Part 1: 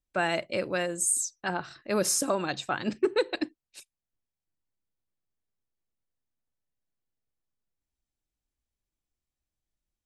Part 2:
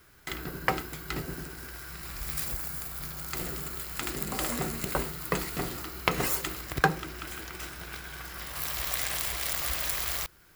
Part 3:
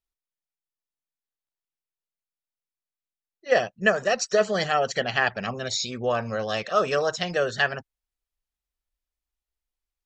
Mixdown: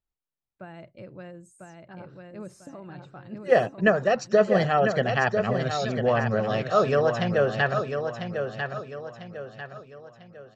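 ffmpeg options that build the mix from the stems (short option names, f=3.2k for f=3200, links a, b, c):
-filter_complex "[0:a]alimiter=limit=-18.5dB:level=0:latency=1:release=160,equalizer=f=110:w=1.2:g=10.5,adelay=450,volume=-13dB,asplit=2[a][b];[b]volume=-3.5dB[c];[2:a]volume=2.5dB,asplit=2[d][e];[e]volume=-7dB[f];[c][f]amix=inputs=2:normalize=0,aecho=0:1:997|1994|2991|3988|4985:1|0.39|0.152|0.0593|0.0231[g];[a][d][g]amix=inputs=3:normalize=0,lowpass=f=1.2k:p=1,equalizer=f=140:t=o:w=1:g=6"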